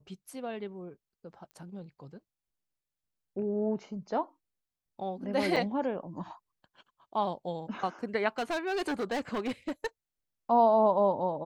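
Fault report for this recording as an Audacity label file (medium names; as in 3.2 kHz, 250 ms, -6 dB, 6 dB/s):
1.510000	1.510000	pop -36 dBFS
5.560000	5.570000	dropout 5.9 ms
8.380000	9.870000	clipped -28 dBFS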